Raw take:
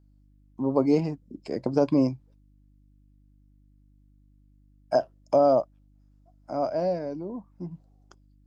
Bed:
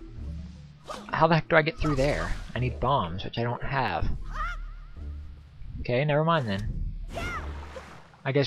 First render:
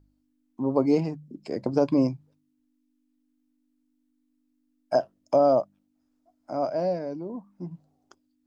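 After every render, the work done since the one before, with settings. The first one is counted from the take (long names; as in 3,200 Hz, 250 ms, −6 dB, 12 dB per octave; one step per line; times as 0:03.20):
hum removal 50 Hz, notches 4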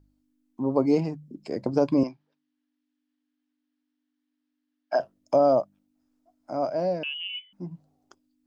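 0:02.03–0:05.00: loudspeaker in its box 400–5,200 Hz, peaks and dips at 500 Hz −6 dB, 1,700 Hz +6 dB, 3,100 Hz +4 dB
0:07.03–0:07.53: voice inversion scrambler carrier 3,200 Hz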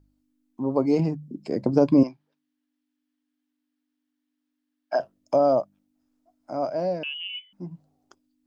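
0:00.99–0:02.03: parametric band 190 Hz +6 dB 2.6 octaves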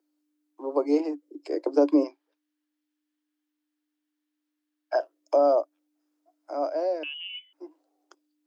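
dynamic equaliser 2,800 Hz, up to −3 dB, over −42 dBFS, Q 1.1
Chebyshev high-pass filter 290 Hz, order 8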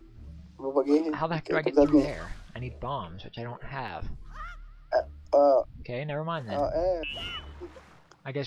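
mix in bed −8.5 dB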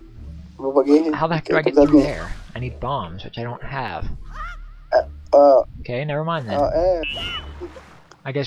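level +9 dB
brickwall limiter −3 dBFS, peak gain reduction 2.5 dB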